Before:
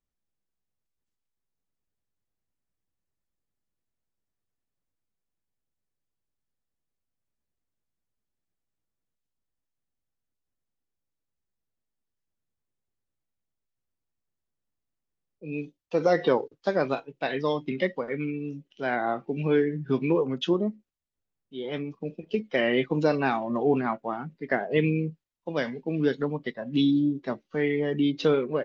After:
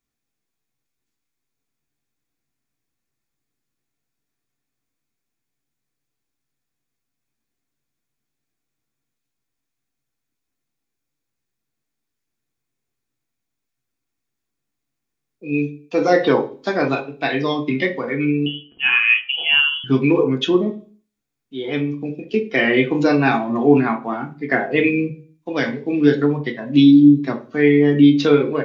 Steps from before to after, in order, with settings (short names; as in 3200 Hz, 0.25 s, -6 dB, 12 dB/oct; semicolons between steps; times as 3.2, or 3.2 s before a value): 18.46–19.84 inverted band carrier 3200 Hz; reverb RT60 0.40 s, pre-delay 3 ms, DRR 3.5 dB; gain +8 dB